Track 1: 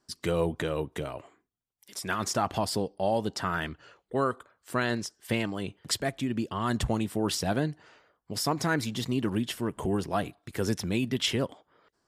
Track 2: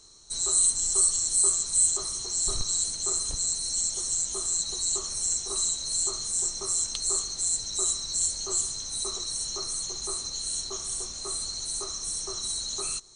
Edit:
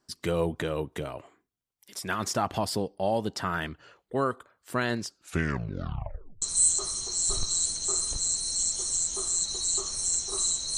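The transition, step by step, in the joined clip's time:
track 1
0:05.00: tape stop 1.42 s
0:06.42: continue with track 2 from 0:01.60

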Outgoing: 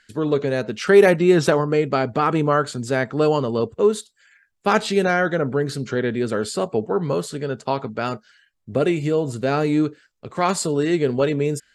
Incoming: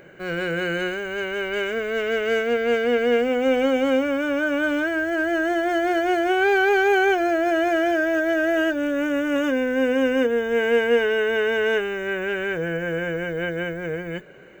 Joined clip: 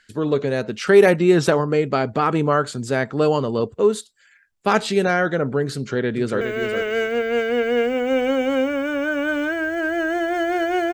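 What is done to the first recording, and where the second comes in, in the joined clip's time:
outgoing
0:05.75–0:06.41: delay throw 410 ms, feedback 15%, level −7.5 dB
0:06.41: continue with incoming from 0:01.76

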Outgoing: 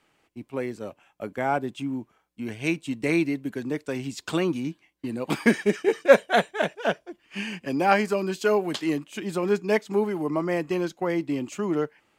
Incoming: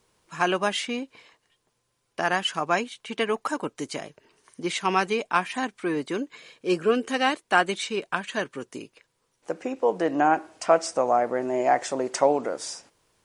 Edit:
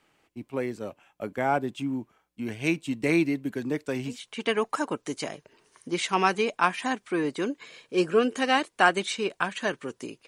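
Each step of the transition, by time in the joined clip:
outgoing
0:04.14: continue with incoming from 0:02.86, crossfade 0.18 s

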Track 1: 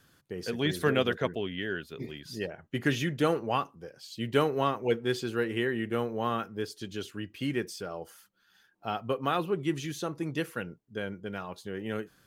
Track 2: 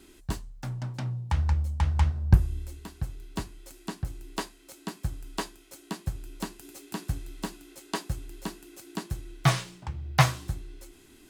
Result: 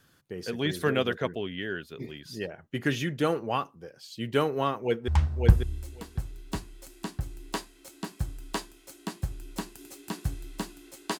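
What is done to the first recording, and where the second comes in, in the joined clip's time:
track 1
0:04.81–0:05.08: delay throw 550 ms, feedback 10%, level −3 dB
0:05.08: continue with track 2 from 0:01.92

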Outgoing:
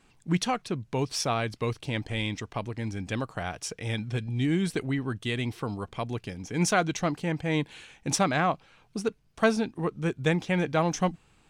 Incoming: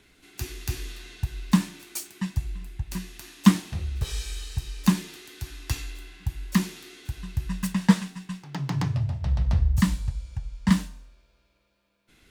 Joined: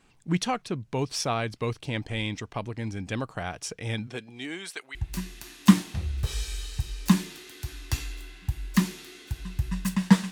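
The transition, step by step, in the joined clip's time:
outgoing
0:04.06–0:04.95: high-pass filter 230 Hz → 1,400 Hz
0:04.95: continue with incoming from 0:02.73

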